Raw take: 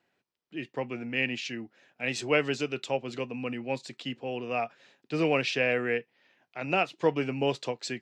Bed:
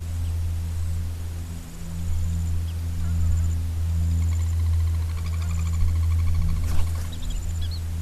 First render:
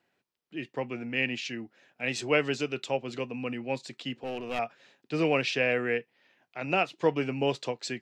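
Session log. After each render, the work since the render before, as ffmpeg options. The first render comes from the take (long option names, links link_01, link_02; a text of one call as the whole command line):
ffmpeg -i in.wav -filter_complex "[0:a]asettb=1/sr,asplit=3[link_01][link_02][link_03];[link_01]atrim=end=4.164[link_04];[link_02]atrim=start=4.16:end=4.59,asetpts=PTS-STARTPTS,afade=type=in:duration=0.004:curve=qsin,afade=type=out:start_time=0.426:duration=0.004:curve=qsin,aeval=exprs='clip(val(0),-1,0.0188)':channel_layout=same[link_05];[link_03]atrim=start=4.586[link_06];[link_04][link_05]acrossfade=duration=0.004:curve1=hsin:curve2=qsin[link_07];[link_07][link_06]acrossfade=duration=0.004:curve1=qsin:curve2=hsin" out.wav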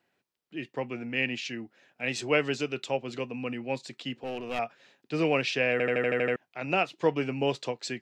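ffmpeg -i in.wav -filter_complex "[0:a]asplit=9[link_01][link_02][link_03][link_04][link_05][link_06][link_07][link_08][link_09];[link_01]atrim=end=5.802[link_10];[link_02]atrim=start=5.718:end=5.802[link_11];[link_03]atrim=start=5.718:end=5.802[link_12];[link_04]atrim=start=5.718:end=5.802[link_13];[link_05]atrim=start=5.718:end=5.802[link_14];[link_06]atrim=start=5.718:end=5.802[link_15];[link_07]atrim=start=5.718:end=5.802[link_16];[link_08]atrim=start=5.718:end=5.802[link_17];[link_09]atrim=start=6.358[link_18];[link_10][link_11]acrossfade=duration=0.004:curve1=hsin:curve2=hsin[link_19];[link_19][link_12]acrossfade=duration=0.004:curve1=hsin:curve2=hsin[link_20];[link_20][link_13]acrossfade=duration=0.004:curve1=hsin:curve2=hsin[link_21];[link_21][link_14]acrossfade=duration=0.004:curve1=hsin:curve2=hsin[link_22];[link_22][link_15]acrossfade=duration=0.004:curve1=hsin:curve2=hsin[link_23];[link_23][link_16]acrossfade=duration=0.004:curve1=hsin:curve2=hsin[link_24];[link_24][link_17]acrossfade=duration=0.004:curve1=hsin:curve2=hsin[link_25];[link_25][link_18]acrossfade=duration=0.004:curve1=hsin:curve2=hsin" out.wav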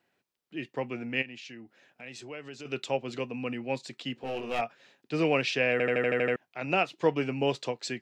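ffmpeg -i in.wav -filter_complex "[0:a]asplit=3[link_01][link_02][link_03];[link_01]afade=type=out:start_time=1.21:duration=0.02[link_04];[link_02]acompressor=threshold=-46dB:ratio=2.5:attack=3.2:release=140:knee=1:detection=peak,afade=type=in:start_time=1.21:duration=0.02,afade=type=out:start_time=2.65:duration=0.02[link_05];[link_03]afade=type=in:start_time=2.65:duration=0.02[link_06];[link_04][link_05][link_06]amix=inputs=3:normalize=0,asettb=1/sr,asplit=3[link_07][link_08][link_09];[link_07]atrim=end=4.184[link_10];[link_08]atrim=start=4.18:end=4.62,asetpts=PTS-STARTPTS,afade=type=in:duration=0.004:curve=qsin,afade=type=out:start_time=0.436:duration=0.004:curve=qsin,asplit=2[link_11][link_12];[link_12]adelay=22,volume=-5dB[link_13];[link_11][link_13]amix=inputs=2:normalize=0,atrim=end_sample=19404[link_14];[link_09]atrim=start=4.616[link_15];[link_10][link_14]acrossfade=duration=0.004:curve1=hsin:curve2=qsin[link_16];[link_16][link_15]acrossfade=duration=0.004:curve1=qsin:curve2=hsin" out.wav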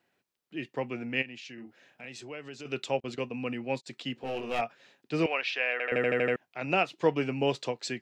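ffmpeg -i in.wav -filter_complex "[0:a]asettb=1/sr,asplit=3[link_01][link_02][link_03];[link_01]atrim=end=1.544[link_04];[link_02]atrim=start=1.54:end=2.06,asetpts=PTS-STARTPTS,afade=type=in:duration=0.004:curve=qsin,afade=type=out:start_time=0.516:duration=0.004:curve=qsin,asplit=2[link_05][link_06];[link_06]adelay=40,volume=-4dB[link_07];[link_05][link_07]amix=inputs=2:normalize=0,atrim=end_sample=22932[link_08];[link_03]atrim=start=2.056[link_09];[link_04][link_08]acrossfade=duration=0.004:curve1=hsin:curve2=qsin[link_10];[link_10][link_09]acrossfade=duration=0.004:curve1=qsin:curve2=hsin,asettb=1/sr,asplit=3[link_11][link_12][link_13];[link_11]atrim=end=3.004[link_14];[link_12]atrim=start=3:end=3.87,asetpts=PTS-STARTPTS,afade=type=in:duration=0.004:curve=qsin,afade=type=out:start_time=0.866:duration=0.004:curve=qsin,agate=range=-31dB:threshold=-43dB:ratio=16:release=100:detection=peak[link_15];[link_13]atrim=start=3.866[link_16];[link_14][link_15]acrossfade=duration=0.004:curve1=hsin:curve2=qsin[link_17];[link_17][link_16]acrossfade=duration=0.004:curve1=qsin:curve2=hsin,asettb=1/sr,asplit=3[link_18][link_19][link_20];[link_18]atrim=end=5.264[link_21];[link_19]atrim=start=5.26:end=5.92,asetpts=PTS-STARTPTS,afade=type=in:duration=0.004:curve=qsin,afade=type=out:start_time=0.656:duration=0.004:curve=qsin,highpass=790,lowpass=3800[link_22];[link_20]atrim=start=5.916[link_23];[link_21][link_22]acrossfade=duration=0.004:curve1=hsin:curve2=qsin[link_24];[link_24][link_23]acrossfade=duration=0.004:curve1=qsin:curve2=hsin" out.wav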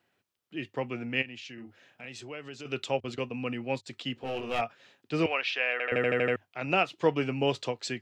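ffmpeg -i in.wav -af "equalizer=frequency=100:width_type=o:width=0.33:gain=11,equalizer=frequency=1250:width_type=o:width=0.33:gain=3,equalizer=frequency=3150:width_type=o:width=0.33:gain=3" out.wav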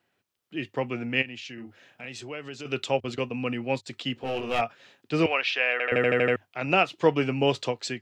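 ffmpeg -i in.wav -af "dynaudnorm=framelen=140:gausssize=5:maxgain=4dB" out.wav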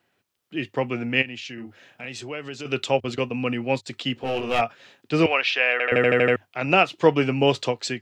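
ffmpeg -i in.wav -af "volume=4dB" out.wav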